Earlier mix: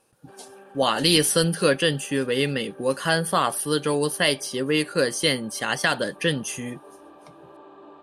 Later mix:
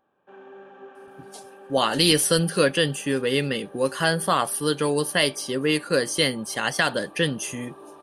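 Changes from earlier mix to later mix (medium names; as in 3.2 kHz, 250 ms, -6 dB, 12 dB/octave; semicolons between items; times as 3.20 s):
speech: entry +0.95 s; background: send +8.0 dB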